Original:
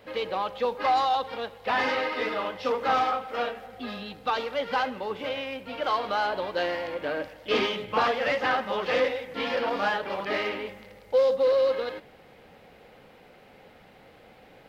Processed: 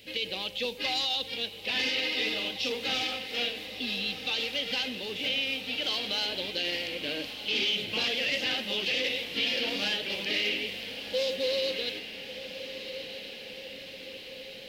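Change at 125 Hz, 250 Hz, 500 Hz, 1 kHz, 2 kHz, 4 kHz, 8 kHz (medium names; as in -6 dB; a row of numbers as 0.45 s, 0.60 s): -2.0 dB, -2.5 dB, -8.5 dB, -15.5 dB, -0.5 dB, +9.0 dB, no reading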